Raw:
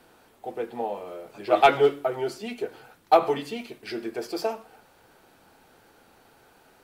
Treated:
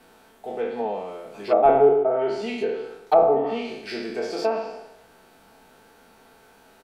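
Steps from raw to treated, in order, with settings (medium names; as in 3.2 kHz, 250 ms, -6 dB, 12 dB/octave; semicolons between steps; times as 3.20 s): spectral sustain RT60 0.93 s; comb 4.5 ms, depth 42%; flutter echo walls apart 11.3 m, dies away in 0.28 s; low-pass that closes with the level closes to 720 Hz, closed at -14.5 dBFS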